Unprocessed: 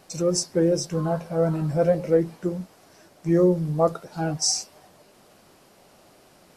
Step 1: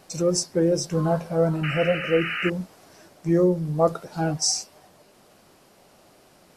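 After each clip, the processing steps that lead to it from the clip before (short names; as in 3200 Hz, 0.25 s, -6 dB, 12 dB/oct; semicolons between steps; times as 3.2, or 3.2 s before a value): painted sound noise, 1.63–2.5, 1200–3000 Hz -29 dBFS; vocal rider within 4 dB 0.5 s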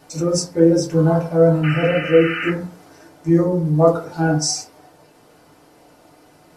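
FDN reverb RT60 0.41 s, low-frequency decay 0.95×, high-frequency decay 0.35×, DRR -4 dB; gain -1 dB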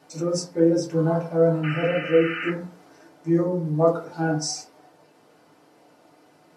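HPF 150 Hz 12 dB/oct; high shelf 7900 Hz -8 dB; gain -5 dB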